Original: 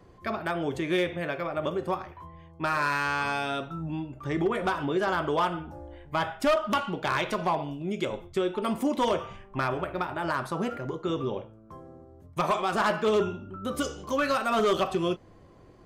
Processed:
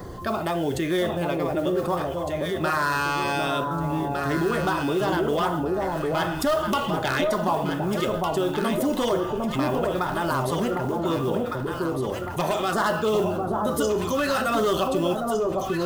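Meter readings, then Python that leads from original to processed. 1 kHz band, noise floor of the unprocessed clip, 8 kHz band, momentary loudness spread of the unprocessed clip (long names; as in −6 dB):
+3.5 dB, −53 dBFS, +8.0 dB, 10 LU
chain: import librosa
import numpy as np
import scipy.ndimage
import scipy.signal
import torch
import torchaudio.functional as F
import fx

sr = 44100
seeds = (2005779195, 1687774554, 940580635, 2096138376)

p1 = fx.high_shelf(x, sr, hz=11000.0, db=11.0)
p2 = fx.notch(p1, sr, hz=2300.0, q=8.9)
p3 = fx.filter_lfo_notch(p2, sr, shape='saw_down', hz=1.1, low_hz=850.0, high_hz=2900.0, q=2.8)
p4 = fx.mod_noise(p3, sr, seeds[0], snr_db=26)
p5 = p4 + fx.echo_alternate(p4, sr, ms=754, hz=980.0, feedback_pct=56, wet_db=-3.0, dry=0)
y = fx.env_flatten(p5, sr, amount_pct=50)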